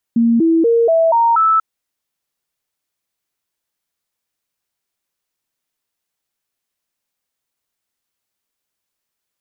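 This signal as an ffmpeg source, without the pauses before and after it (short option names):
-f lavfi -i "aevalsrc='0.335*clip(min(mod(t,0.24),0.24-mod(t,0.24))/0.005,0,1)*sin(2*PI*232*pow(2,floor(t/0.24)/2)*mod(t,0.24))':d=1.44:s=44100"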